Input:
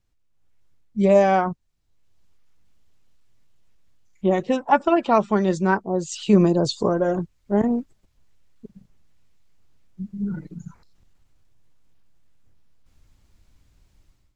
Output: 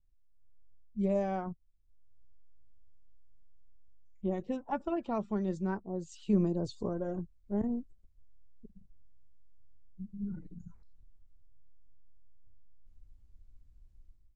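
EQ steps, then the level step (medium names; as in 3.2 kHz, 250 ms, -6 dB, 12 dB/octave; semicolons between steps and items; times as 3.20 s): pre-emphasis filter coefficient 0.8; tilt EQ -4.5 dB/octave; peaking EQ 140 Hz -8 dB 0.36 oct; -6.5 dB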